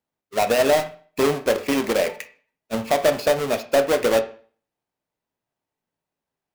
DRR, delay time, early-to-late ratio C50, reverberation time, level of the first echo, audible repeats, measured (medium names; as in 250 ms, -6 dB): 8.0 dB, no echo, 13.5 dB, 0.45 s, no echo, no echo